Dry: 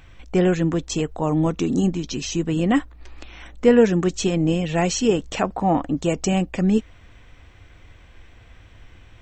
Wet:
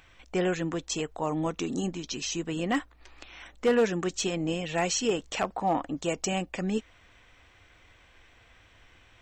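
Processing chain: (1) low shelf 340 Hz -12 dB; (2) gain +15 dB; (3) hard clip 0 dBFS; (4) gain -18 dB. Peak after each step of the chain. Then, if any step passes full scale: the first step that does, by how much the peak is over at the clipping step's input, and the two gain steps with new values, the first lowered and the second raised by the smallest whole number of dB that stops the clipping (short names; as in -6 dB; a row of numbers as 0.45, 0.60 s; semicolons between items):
-7.5, +7.5, 0.0, -18.0 dBFS; step 2, 7.5 dB; step 2 +7 dB, step 4 -10 dB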